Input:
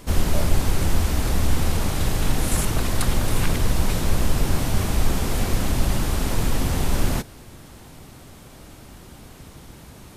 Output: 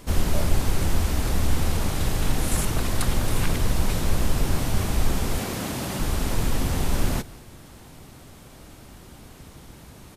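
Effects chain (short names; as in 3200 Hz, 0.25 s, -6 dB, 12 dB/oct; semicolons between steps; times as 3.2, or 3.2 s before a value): 5.38–6 HPF 140 Hz 12 dB/oct; echo 0.173 s -22.5 dB; gain -2 dB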